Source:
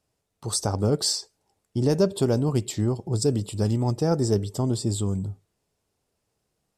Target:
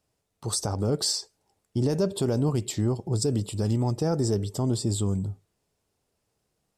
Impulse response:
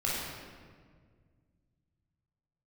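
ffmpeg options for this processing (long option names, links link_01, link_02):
-af "alimiter=limit=-16dB:level=0:latency=1:release=42"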